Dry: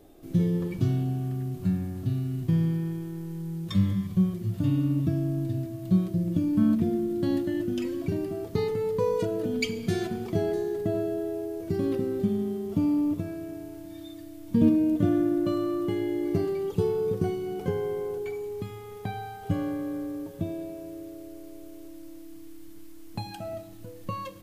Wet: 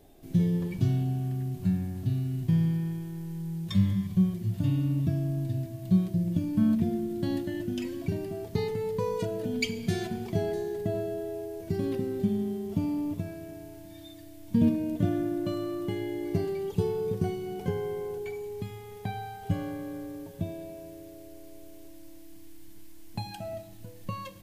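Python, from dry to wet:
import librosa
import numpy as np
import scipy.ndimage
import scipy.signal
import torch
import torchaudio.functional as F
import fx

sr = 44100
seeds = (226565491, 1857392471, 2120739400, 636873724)

y = fx.graphic_eq_31(x, sr, hz=(315, 500, 1250), db=(-8, -6, -8))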